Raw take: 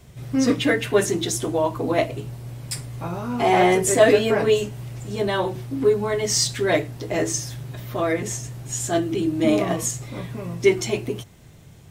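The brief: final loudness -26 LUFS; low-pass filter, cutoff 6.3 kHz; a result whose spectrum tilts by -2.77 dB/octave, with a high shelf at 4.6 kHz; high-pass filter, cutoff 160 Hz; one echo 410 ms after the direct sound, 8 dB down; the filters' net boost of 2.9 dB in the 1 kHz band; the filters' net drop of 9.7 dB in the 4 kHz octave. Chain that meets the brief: high-pass 160 Hz; low-pass 6.3 kHz; peaking EQ 1 kHz +5 dB; peaking EQ 4 kHz -9 dB; treble shelf 4.6 kHz -7.5 dB; delay 410 ms -8 dB; trim -4.5 dB

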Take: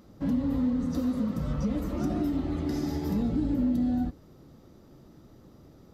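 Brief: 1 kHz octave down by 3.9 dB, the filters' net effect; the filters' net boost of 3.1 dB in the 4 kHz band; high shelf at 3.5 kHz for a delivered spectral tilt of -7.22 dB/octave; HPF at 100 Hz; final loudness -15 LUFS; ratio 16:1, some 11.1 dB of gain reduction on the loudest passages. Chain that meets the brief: high-pass 100 Hz; peaking EQ 1 kHz -5.5 dB; treble shelf 3.5 kHz -7 dB; peaking EQ 4 kHz +9 dB; compression 16:1, threshold -35 dBFS; trim +24.5 dB

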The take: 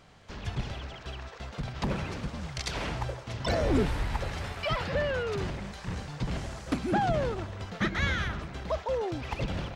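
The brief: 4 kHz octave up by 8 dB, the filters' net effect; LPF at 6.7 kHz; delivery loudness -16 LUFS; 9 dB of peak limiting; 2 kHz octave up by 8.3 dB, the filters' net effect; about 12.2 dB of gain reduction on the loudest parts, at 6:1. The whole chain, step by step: low-pass 6.7 kHz; peaking EQ 2 kHz +8.5 dB; peaking EQ 4 kHz +7.5 dB; compression 6:1, threshold -33 dBFS; trim +22 dB; peak limiter -6.5 dBFS

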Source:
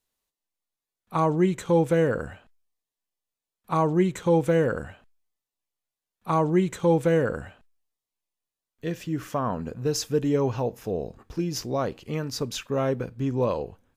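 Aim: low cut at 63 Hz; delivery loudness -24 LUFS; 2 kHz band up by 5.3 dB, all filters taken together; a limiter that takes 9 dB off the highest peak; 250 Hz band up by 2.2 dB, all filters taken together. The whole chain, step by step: high-pass 63 Hz; peaking EQ 250 Hz +3.5 dB; peaking EQ 2 kHz +7 dB; trim +4 dB; peak limiter -13 dBFS

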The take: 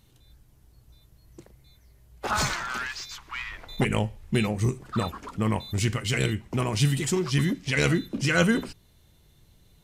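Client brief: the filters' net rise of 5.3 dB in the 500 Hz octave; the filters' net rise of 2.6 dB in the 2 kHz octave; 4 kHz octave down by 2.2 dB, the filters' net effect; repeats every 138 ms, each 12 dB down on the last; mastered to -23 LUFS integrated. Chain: peaking EQ 500 Hz +6.5 dB; peaking EQ 2 kHz +4 dB; peaking EQ 4 kHz -5 dB; feedback delay 138 ms, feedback 25%, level -12 dB; trim +2 dB

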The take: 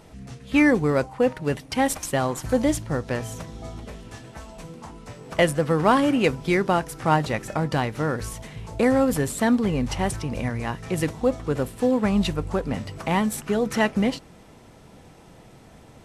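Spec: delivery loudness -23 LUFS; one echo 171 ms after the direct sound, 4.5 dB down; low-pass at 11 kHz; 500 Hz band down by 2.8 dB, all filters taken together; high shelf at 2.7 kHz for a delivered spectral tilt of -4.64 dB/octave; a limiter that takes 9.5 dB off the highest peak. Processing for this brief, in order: low-pass 11 kHz; peaking EQ 500 Hz -3.5 dB; treble shelf 2.7 kHz +6.5 dB; peak limiter -16 dBFS; delay 171 ms -4.5 dB; trim +2.5 dB

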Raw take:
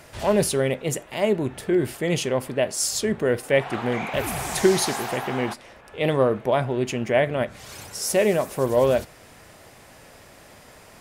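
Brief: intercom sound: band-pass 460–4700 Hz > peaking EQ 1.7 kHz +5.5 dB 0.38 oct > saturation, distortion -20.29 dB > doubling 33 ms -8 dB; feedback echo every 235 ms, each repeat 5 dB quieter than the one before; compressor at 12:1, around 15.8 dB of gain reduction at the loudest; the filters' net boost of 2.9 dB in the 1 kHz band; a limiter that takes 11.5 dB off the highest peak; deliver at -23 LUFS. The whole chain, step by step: peaking EQ 1 kHz +4 dB; compression 12:1, threshold -29 dBFS; peak limiter -30 dBFS; band-pass 460–4700 Hz; peaking EQ 1.7 kHz +5.5 dB 0.38 oct; feedback delay 235 ms, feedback 56%, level -5 dB; saturation -31 dBFS; doubling 33 ms -8 dB; trim +18 dB

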